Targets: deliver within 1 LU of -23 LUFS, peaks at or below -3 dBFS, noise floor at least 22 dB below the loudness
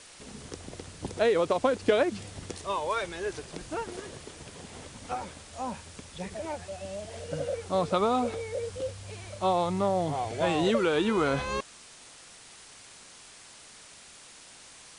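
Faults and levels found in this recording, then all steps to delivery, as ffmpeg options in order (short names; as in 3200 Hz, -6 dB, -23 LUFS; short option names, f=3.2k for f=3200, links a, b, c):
noise floor -51 dBFS; noise floor target -52 dBFS; loudness -30.0 LUFS; peak -10.5 dBFS; loudness target -23.0 LUFS
-> -af "afftdn=nr=6:nf=-51"
-af "volume=7dB"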